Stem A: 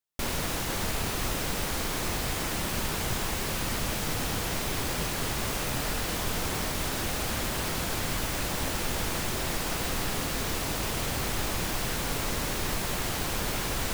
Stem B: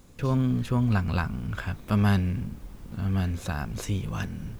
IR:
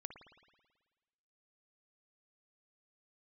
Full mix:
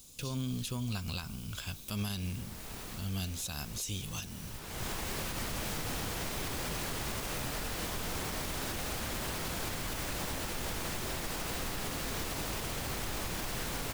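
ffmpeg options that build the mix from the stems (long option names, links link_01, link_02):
-filter_complex "[0:a]adelay=1700,volume=-3.5dB[link_01];[1:a]aexciter=amount=7.7:drive=4.8:freq=2700,volume=-11dB,asplit=3[link_02][link_03][link_04];[link_03]volume=-12dB[link_05];[link_04]apad=whole_len=689658[link_06];[link_01][link_06]sidechaincompress=threshold=-58dB:ratio=5:attack=22:release=390[link_07];[2:a]atrim=start_sample=2205[link_08];[link_05][link_08]afir=irnorm=-1:irlink=0[link_09];[link_07][link_02][link_09]amix=inputs=3:normalize=0,alimiter=level_in=2.5dB:limit=-24dB:level=0:latency=1:release=94,volume=-2.5dB"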